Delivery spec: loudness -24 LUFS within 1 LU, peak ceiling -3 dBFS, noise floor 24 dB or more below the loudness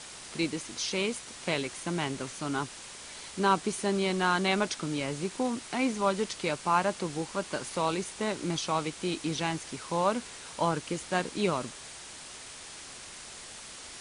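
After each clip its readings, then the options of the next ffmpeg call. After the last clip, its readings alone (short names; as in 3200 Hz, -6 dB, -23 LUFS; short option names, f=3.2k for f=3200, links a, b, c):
noise floor -46 dBFS; noise floor target -55 dBFS; loudness -31.0 LUFS; peak -12.0 dBFS; loudness target -24.0 LUFS
-> -af "afftdn=nr=9:nf=-46"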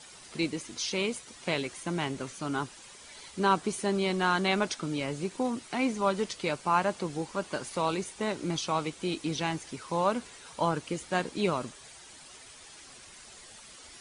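noise floor -51 dBFS; noise floor target -55 dBFS
-> -af "afftdn=nr=6:nf=-51"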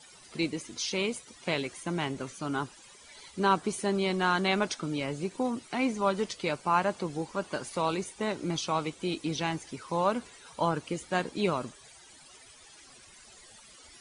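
noise floor -54 dBFS; noise floor target -55 dBFS
-> -af "afftdn=nr=6:nf=-54"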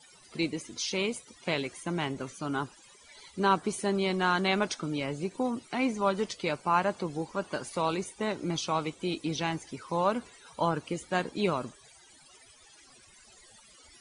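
noise floor -57 dBFS; loudness -31.0 LUFS; peak -12.0 dBFS; loudness target -24.0 LUFS
-> -af "volume=7dB"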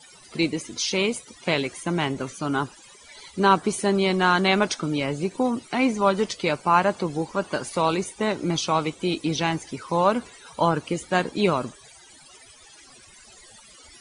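loudness -24.0 LUFS; peak -5.0 dBFS; noise floor -50 dBFS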